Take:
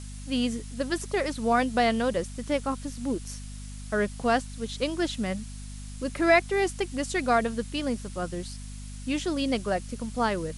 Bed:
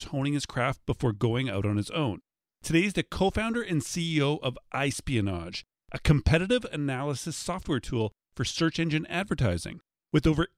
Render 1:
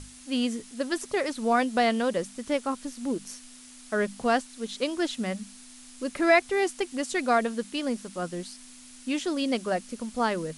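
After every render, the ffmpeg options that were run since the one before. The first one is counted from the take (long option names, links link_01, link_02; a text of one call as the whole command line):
ffmpeg -i in.wav -af "bandreject=frequency=50:width_type=h:width=6,bandreject=frequency=100:width_type=h:width=6,bandreject=frequency=150:width_type=h:width=6,bandreject=frequency=200:width_type=h:width=6" out.wav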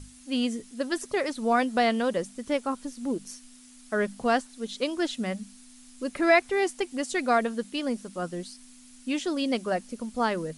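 ffmpeg -i in.wav -af "afftdn=noise_reduction=6:noise_floor=-49" out.wav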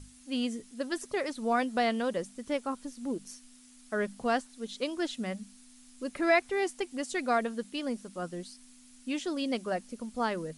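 ffmpeg -i in.wav -af "volume=-4.5dB" out.wav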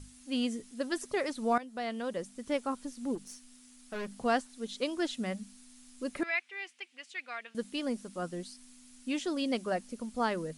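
ffmpeg -i in.wav -filter_complex "[0:a]asettb=1/sr,asplit=3[link_01][link_02][link_03];[link_01]atrim=end=3.154[link_04];[link_02]atrim=start=3.15:end=4.12,asetpts=PTS-STARTPTS,afade=type=in:duration=0.004:curve=qsin,afade=type=out:start_time=0.966:duration=0.004:curve=qsin,aeval=exprs='(tanh(56.2*val(0)+0.3)-tanh(0.3))/56.2':channel_layout=same[link_05];[link_03]atrim=start=4.116[link_06];[link_04][link_05]acrossfade=duration=0.004:curve1=hsin:curve2=qsin[link_07];[link_07][link_06]acrossfade=duration=0.004:curve1=qsin:curve2=hsin,asettb=1/sr,asplit=3[link_08][link_09][link_10];[link_08]atrim=end=6.234[link_11];[link_09]atrim=start=6.23:end=7.55,asetpts=PTS-STARTPTS,afade=type=in:duration=0.004:curve=qsin,afade=type=out:start_time=1.316:duration=0.004:curve=qsin,bandpass=frequency=2500:width_type=q:width=2.4[link_12];[link_10]atrim=start=7.546[link_13];[link_11][link_12]acrossfade=duration=0.004:curve1=hsin:curve2=qsin[link_14];[link_14][link_13]acrossfade=duration=0.004:curve1=qsin:curve2=hsin,asplit=2[link_15][link_16];[link_15]atrim=end=1.58,asetpts=PTS-STARTPTS,afade=type=out:start_time=1.576:duration=0.004:curve=hsin:silence=0.149624[link_17];[link_16]atrim=start=1.58,asetpts=PTS-STARTPTS,afade=type=in:duration=0.98:silence=0.149624[link_18];[link_17][link_18]concat=n=2:v=0:a=1" out.wav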